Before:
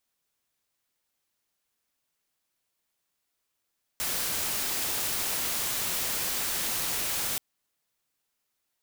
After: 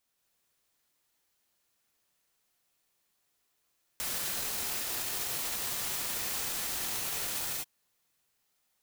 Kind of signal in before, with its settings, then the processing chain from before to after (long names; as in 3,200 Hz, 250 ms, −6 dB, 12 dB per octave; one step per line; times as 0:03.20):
noise white, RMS −30 dBFS 3.38 s
reverb whose tail is shaped and stops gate 270 ms rising, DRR −1 dB
brickwall limiter −25 dBFS